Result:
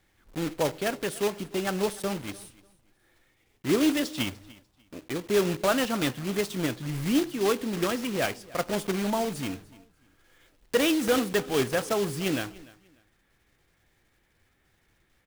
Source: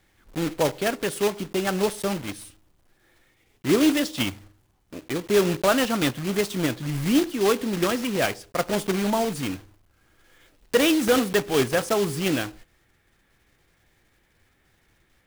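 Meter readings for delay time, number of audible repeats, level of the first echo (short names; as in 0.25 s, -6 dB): 0.296 s, 2, -21.5 dB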